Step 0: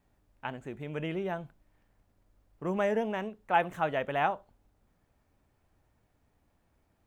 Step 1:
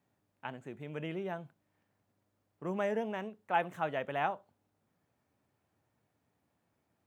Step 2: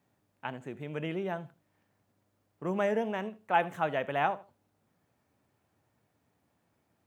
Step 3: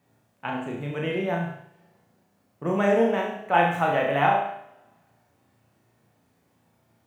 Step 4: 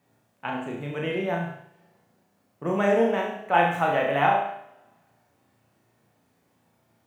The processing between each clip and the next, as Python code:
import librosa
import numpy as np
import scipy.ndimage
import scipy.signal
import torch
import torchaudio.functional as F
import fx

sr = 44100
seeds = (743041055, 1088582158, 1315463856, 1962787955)

y1 = scipy.signal.sosfilt(scipy.signal.butter(4, 99.0, 'highpass', fs=sr, output='sos'), x)
y1 = y1 * librosa.db_to_amplitude(-4.5)
y2 = fx.echo_feedback(y1, sr, ms=78, feedback_pct=23, wet_db=-20.0)
y2 = y2 * librosa.db_to_amplitude(4.0)
y3 = fx.room_flutter(y2, sr, wall_m=6.0, rt60_s=0.55)
y3 = fx.rev_double_slope(y3, sr, seeds[0], early_s=0.68, late_s=2.1, knee_db=-25, drr_db=4.0)
y3 = y3 * librosa.db_to_amplitude(4.5)
y4 = fx.low_shelf(y3, sr, hz=120.0, db=-5.5)